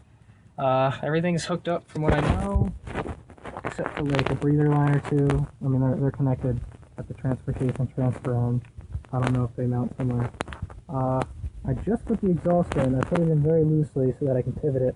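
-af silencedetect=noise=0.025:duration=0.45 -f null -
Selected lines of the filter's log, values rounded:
silence_start: 0.00
silence_end: 0.58 | silence_duration: 0.58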